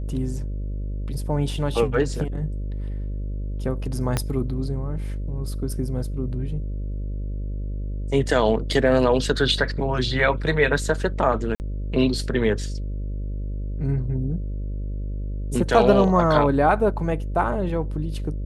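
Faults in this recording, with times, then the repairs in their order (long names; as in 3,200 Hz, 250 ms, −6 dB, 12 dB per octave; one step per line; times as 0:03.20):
mains buzz 50 Hz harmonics 12 −28 dBFS
0:04.17: click −8 dBFS
0:11.55–0:11.60: drop-out 49 ms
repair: click removal
hum removal 50 Hz, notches 12
repair the gap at 0:11.55, 49 ms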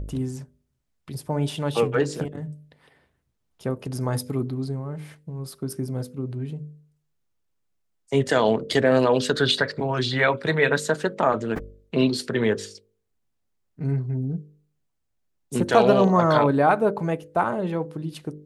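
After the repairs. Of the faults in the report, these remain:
0:04.17: click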